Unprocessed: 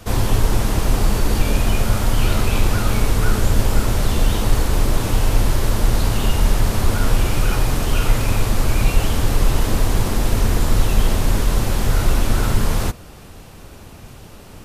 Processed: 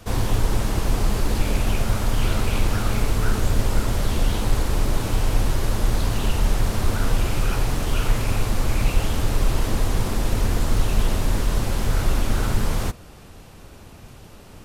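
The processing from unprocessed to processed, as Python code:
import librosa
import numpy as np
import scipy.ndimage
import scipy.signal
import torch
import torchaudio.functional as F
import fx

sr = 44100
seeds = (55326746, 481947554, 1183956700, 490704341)

y = fx.doppler_dist(x, sr, depth_ms=0.47)
y = y * librosa.db_to_amplitude(-4.0)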